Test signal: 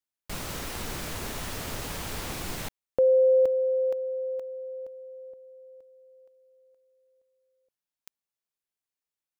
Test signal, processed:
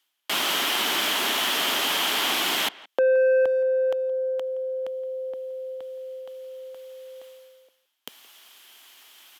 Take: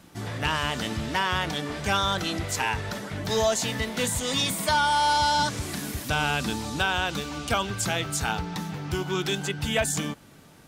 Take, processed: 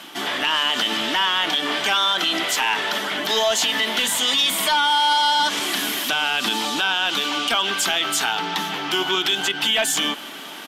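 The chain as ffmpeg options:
ffmpeg -i in.wav -filter_complex "[0:a]highpass=frequency=230:width=0.5412,highpass=frequency=230:width=1.3066,asplit=2[link_01][link_02];[link_02]highpass=frequency=720:poles=1,volume=12dB,asoftclip=type=tanh:threshold=-11dB[link_03];[link_01][link_03]amix=inputs=2:normalize=0,lowpass=frequency=4100:poles=1,volume=-6dB,equalizer=frequency=500:width_type=o:width=0.33:gain=-8,equalizer=frequency=3150:width_type=o:width=0.33:gain=11,equalizer=frequency=12500:width_type=o:width=0.33:gain=11,asplit=2[link_04][link_05];[link_05]acompressor=threshold=-29dB:ratio=6:attack=0.55:release=47,volume=-0.5dB[link_06];[link_04][link_06]amix=inputs=2:normalize=0,alimiter=limit=-13.5dB:level=0:latency=1:release=57,areverse,acompressor=mode=upward:threshold=-26dB:ratio=2.5:attack=0.38:release=575:knee=2.83:detection=peak,areverse,highshelf=frequency=11000:gain=-4,asplit=2[link_07][link_08];[link_08]adelay=170,highpass=300,lowpass=3400,asoftclip=type=hard:threshold=-22.5dB,volume=-19dB[link_09];[link_07][link_09]amix=inputs=2:normalize=0,volume=2.5dB" out.wav

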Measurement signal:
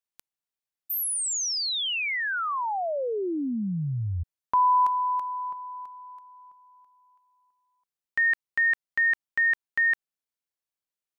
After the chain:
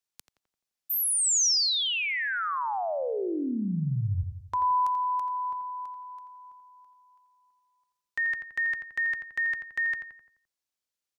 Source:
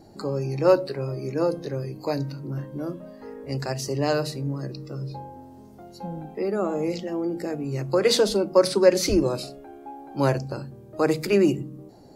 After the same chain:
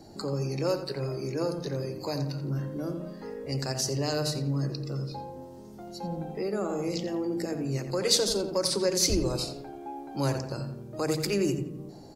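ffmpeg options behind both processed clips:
ffmpeg -i in.wav -filter_complex "[0:a]equalizer=frequency=5500:width=0.79:gain=5.5,acrossover=split=130|5100[link_01][link_02][link_03];[link_02]acompressor=threshold=-30dB:ratio=2:attack=0.26:release=348:knee=2.83:detection=peak[link_04];[link_01][link_04][link_03]amix=inputs=3:normalize=0,asplit=2[link_05][link_06];[link_06]adelay=86,lowpass=frequency=2300:poles=1,volume=-7dB,asplit=2[link_07][link_08];[link_08]adelay=86,lowpass=frequency=2300:poles=1,volume=0.5,asplit=2[link_09][link_10];[link_10]adelay=86,lowpass=frequency=2300:poles=1,volume=0.5,asplit=2[link_11][link_12];[link_12]adelay=86,lowpass=frequency=2300:poles=1,volume=0.5,asplit=2[link_13][link_14];[link_14]adelay=86,lowpass=frequency=2300:poles=1,volume=0.5,asplit=2[link_15][link_16];[link_16]adelay=86,lowpass=frequency=2300:poles=1,volume=0.5[link_17];[link_05][link_07][link_09][link_11][link_13][link_15][link_17]amix=inputs=7:normalize=0" out.wav

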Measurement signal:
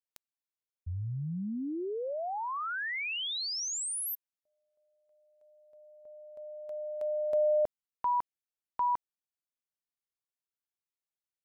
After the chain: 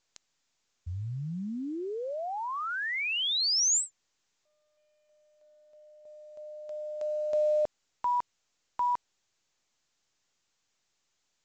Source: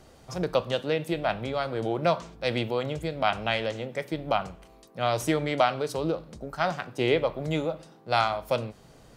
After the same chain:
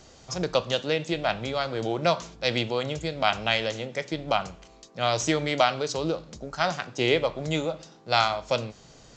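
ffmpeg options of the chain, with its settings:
ffmpeg -i in.wav -af "crystalizer=i=3:c=0" -ar 16000 -c:a pcm_mulaw out.wav

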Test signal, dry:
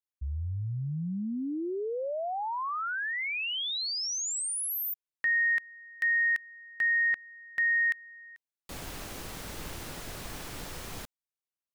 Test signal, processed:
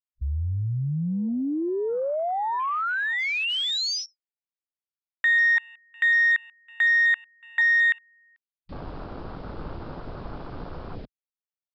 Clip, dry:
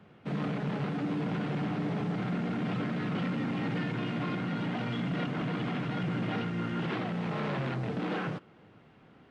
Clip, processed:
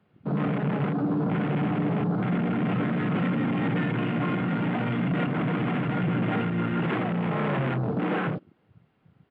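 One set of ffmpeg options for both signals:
ffmpeg -i in.wav -af "aresample=11025,aresample=44100,afwtdn=0.00794,volume=6.5dB" out.wav

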